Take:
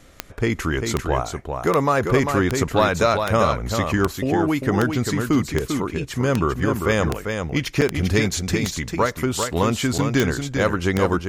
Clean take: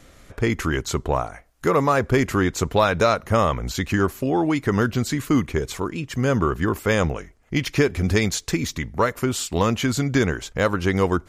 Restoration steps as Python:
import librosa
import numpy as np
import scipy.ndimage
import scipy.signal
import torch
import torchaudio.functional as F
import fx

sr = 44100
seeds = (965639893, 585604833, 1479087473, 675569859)

y = fx.fix_declick_ar(x, sr, threshold=10.0)
y = fx.fix_interpolate(y, sr, at_s=(7.81, 9.98), length_ms=7.5)
y = fx.fix_echo_inverse(y, sr, delay_ms=396, level_db=-6.0)